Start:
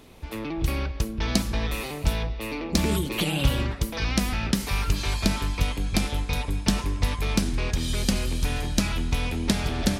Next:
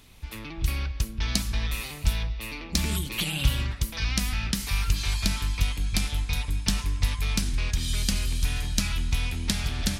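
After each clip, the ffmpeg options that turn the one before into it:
ffmpeg -i in.wav -af "equalizer=frequency=450:width=0.47:gain=-14,volume=1.5dB" out.wav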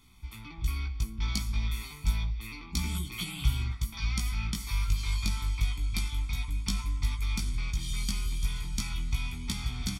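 ffmpeg -i in.wav -af "aecho=1:1:0.9:0.95,flanger=delay=16.5:depth=2:speed=0.3,volume=-7dB" out.wav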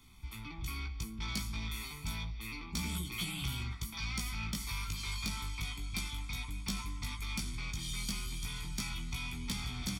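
ffmpeg -i in.wav -filter_complex "[0:a]acrossover=split=120|4900[link_01][link_02][link_03];[link_01]acompressor=threshold=-39dB:ratio=6[link_04];[link_04][link_02][link_03]amix=inputs=3:normalize=0,asoftclip=type=tanh:threshold=-29dB" out.wav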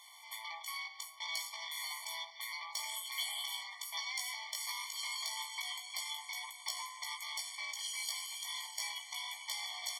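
ffmpeg -i in.wav -af "alimiter=level_in=13.5dB:limit=-24dB:level=0:latency=1:release=219,volume=-13.5dB,afftfilt=real='re*eq(mod(floor(b*sr/1024/590),2),1)':imag='im*eq(mod(floor(b*sr/1024/590),2),1)':win_size=1024:overlap=0.75,volume=10dB" out.wav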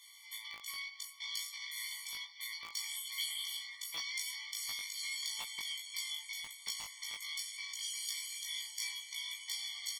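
ffmpeg -i in.wav -filter_complex "[0:a]acrossover=split=1400[link_01][link_02];[link_01]acrusher=bits=6:mix=0:aa=0.000001[link_03];[link_03][link_02]amix=inputs=2:normalize=0,asplit=2[link_04][link_05];[link_05]adelay=19,volume=-2.5dB[link_06];[link_04][link_06]amix=inputs=2:normalize=0,volume=-1.5dB" out.wav

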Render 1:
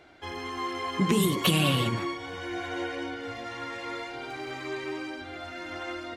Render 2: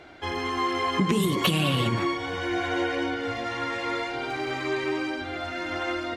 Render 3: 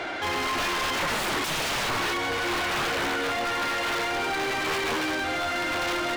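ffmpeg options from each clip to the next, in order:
ffmpeg -i in.wav -af "highshelf=frequency=8000:gain=-6.5,acompressor=threshold=-27dB:ratio=6,volume=7dB" out.wav
ffmpeg -i in.wav -filter_complex "[0:a]aeval=exprs='(mod(13.3*val(0)+1,2)-1)/13.3':channel_layout=same,asplit=2[link_01][link_02];[link_02]highpass=frequency=720:poles=1,volume=29dB,asoftclip=type=tanh:threshold=-22dB[link_03];[link_01][link_03]amix=inputs=2:normalize=0,lowpass=frequency=3300:poles=1,volume=-6dB" out.wav

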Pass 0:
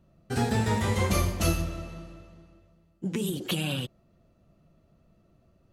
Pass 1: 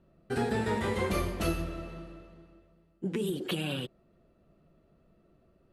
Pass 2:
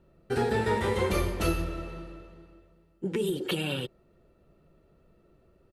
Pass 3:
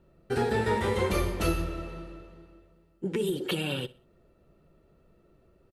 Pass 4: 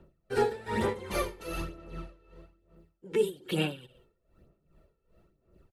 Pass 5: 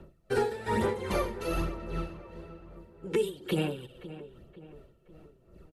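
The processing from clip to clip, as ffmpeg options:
ffmpeg -i in.wav -filter_complex "[0:a]equalizer=frequency=100:width_type=o:width=0.67:gain=-7,equalizer=frequency=400:width_type=o:width=0.67:gain=6,equalizer=frequency=1600:width_type=o:width=0.67:gain=3,equalizer=frequency=6300:width_type=o:width=0.67:gain=-9,asplit=2[link_01][link_02];[link_02]alimiter=limit=-22.5dB:level=0:latency=1:release=294,volume=-2dB[link_03];[link_01][link_03]amix=inputs=2:normalize=0,lowpass=11000,volume=-7dB" out.wav
ffmpeg -i in.wav -af "aecho=1:1:2.2:0.32,volume=2.5dB" out.wav
ffmpeg -i in.wav -af "aecho=1:1:62|124|186:0.1|0.034|0.0116" out.wav
ffmpeg -i in.wav -filter_complex "[0:a]acrossover=split=180[link_01][link_02];[link_01]asoftclip=type=tanh:threshold=-39dB[link_03];[link_03][link_02]amix=inputs=2:normalize=0,aphaser=in_gain=1:out_gain=1:delay=2.3:decay=0.51:speed=1.1:type=sinusoidal,aeval=exprs='val(0)*pow(10,-18*(0.5-0.5*cos(2*PI*2.5*n/s))/20)':channel_layout=same" out.wav
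ffmpeg -i in.wav -filter_complex "[0:a]acrossover=split=1400|6500[link_01][link_02][link_03];[link_01]acompressor=threshold=-33dB:ratio=4[link_04];[link_02]acompressor=threshold=-49dB:ratio=4[link_05];[link_03]acompressor=threshold=-59dB:ratio=4[link_06];[link_04][link_05][link_06]amix=inputs=3:normalize=0,asplit=2[link_07][link_08];[link_08]adelay=523,lowpass=frequency=2400:poles=1,volume=-14.5dB,asplit=2[link_09][link_10];[link_10]adelay=523,lowpass=frequency=2400:poles=1,volume=0.5,asplit=2[link_11][link_12];[link_12]adelay=523,lowpass=frequency=2400:poles=1,volume=0.5,asplit=2[link_13][link_14];[link_14]adelay=523,lowpass=frequency=2400:poles=1,volume=0.5,asplit=2[link_15][link_16];[link_16]adelay=523,lowpass=frequency=2400:poles=1,volume=0.5[link_17];[link_07][link_09][link_11][link_13][link_15][link_17]amix=inputs=6:normalize=0,aresample=32000,aresample=44100,volume=7dB" out.wav

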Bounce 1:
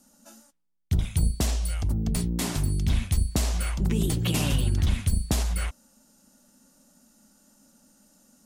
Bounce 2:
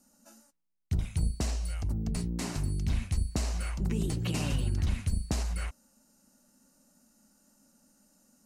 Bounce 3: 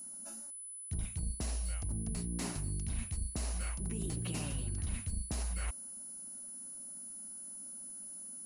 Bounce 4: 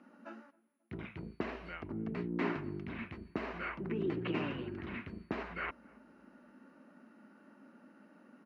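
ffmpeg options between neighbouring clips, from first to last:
ffmpeg -i in.wav -filter_complex "[0:a]acrossover=split=9300[link_01][link_02];[link_02]acompressor=threshold=-54dB:ratio=4:attack=1:release=60[link_03];[link_01][link_03]amix=inputs=2:normalize=0,equalizer=frequency=3400:width=6.7:gain=-9,volume=-5.5dB" out.wav
ffmpeg -i in.wav -af "areverse,acompressor=threshold=-37dB:ratio=10,areverse,aeval=exprs='val(0)+0.00447*sin(2*PI*10000*n/s)':channel_layout=same,volume=3dB" out.wav
ffmpeg -i in.wav -filter_complex "[0:a]highpass=310,equalizer=frequency=360:width_type=q:width=4:gain=5,equalizer=frequency=550:width_type=q:width=4:gain=-5,equalizer=frequency=780:width_type=q:width=4:gain=-7,lowpass=frequency=2300:width=0.5412,lowpass=frequency=2300:width=1.3066,asplit=2[link_01][link_02];[link_02]adelay=268,lowpass=frequency=820:poles=1,volume=-22dB,asplit=2[link_03][link_04];[link_04]adelay=268,lowpass=frequency=820:poles=1,volume=0.52,asplit=2[link_05][link_06];[link_06]adelay=268,lowpass=frequency=820:poles=1,volume=0.52,asplit=2[link_07][link_08];[link_08]adelay=268,lowpass=frequency=820:poles=1,volume=0.52[link_09];[link_01][link_03][link_05][link_07][link_09]amix=inputs=5:normalize=0,volume=10.5dB" out.wav

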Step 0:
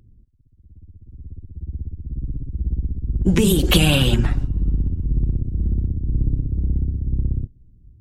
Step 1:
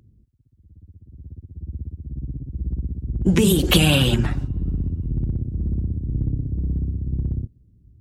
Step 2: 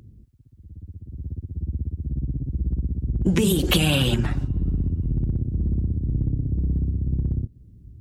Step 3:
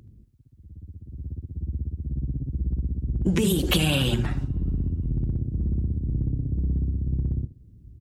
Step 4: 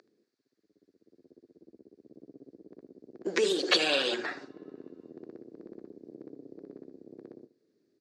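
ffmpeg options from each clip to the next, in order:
ffmpeg -i in.wav -af "highpass=62" out.wav
ffmpeg -i in.wav -af "acompressor=threshold=-32dB:ratio=2,volume=7dB" out.wav
ffmpeg -i in.wav -af "aecho=1:1:76:0.158,volume=-2.5dB" out.wav
ffmpeg -i in.wav -af "highpass=frequency=400:width=0.5412,highpass=frequency=400:width=1.3066,equalizer=frequency=430:width_type=q:width=4:gain=3,equalizer=frequency=880:width_type=q:width=4:gain=-5,equalizer=frequency=1700:width_type=q:width=4:gain=6,equalizer=frequency=3000:width_type=q:width=4:gain=-8,equalizer=frequency=4500:width_type=q:width=4:gain=8,lowpass=frequency=6300:width=0.5412,lowpass=frequency=6300:width=1.3066,volume=1.5dB" out.wav

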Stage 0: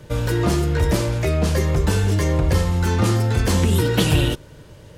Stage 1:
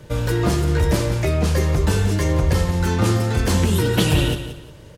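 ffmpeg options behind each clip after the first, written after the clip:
ffmpeg -i in.wav -af "aecho=1:1:178|356|534:0.282|0.0789|0.0221" out.wav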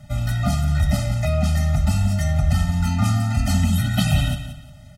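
ffmpeg -i in.wav -af "afftfilt=real='re*eq(mod(floor(b*sr/1024/300),2),0)':imag='im*eq(mod(floor(b*sr/1024/300),2),0)':win_size=1024:overlap=0.75" out.wav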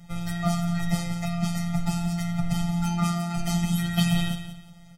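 ffmpeg -i in.wav -af "afftfilt=real='hypot(re,im)*cos(PI*b)':imag='0':win_size=1024:overlap=0.75" out.wav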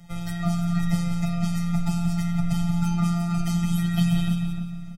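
ffmpeg -i in.wav -filter_complex "[0:a]acrossover=split=410[link_01][link_02];[link_02]acompressor=threshold=-36dB:ratio=2[link_03];[link_01][link_03]amix=inputs=2:normalize=0,asplit=2[link_04][link_05];[link_05]adelay=301,lowpass=frequency=1400:poles=1,volume=-5.5dB,asplit=2[link_06][link_07];[link_07]adelay=301,lowpass=frequency=1400:poles=1,volume=0.38,asplit=2[link_08][link_09];[link_09]adelay=301,lowpass=frequency=1400:poles=1,volume=0.38,asplit=2[link_10][link_11];[link_11]adelay=301,lowpass=frequency=1400:poles=1,volume=0.38,asplit=2[link_12][link_13];[link_13]adelay=301,lowpass=frequency=1400:poles=1,volume=0.38[link_14];[link_04][link_06][link_08][link_10][link_12][link_14]amix=inputs=6:normalize=0" out.wav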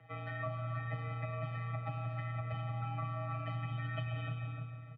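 ffmpeg -i in.wav -af "highpass=frequency=230:width_type=q:width=0.5412,highpass=frequency=230:width_type=q:width=1.307,lowpass=frequency=2700:width_type=q:width=0.5176,lowpass=frequency=2700:width_type=q:width=0.7071,lowpass=frequency=2700:width_type=q:width=1.932,afreqshift=-54,acompressor=threshold=-33dB:ratio=6,volume=-2dB" out.wav

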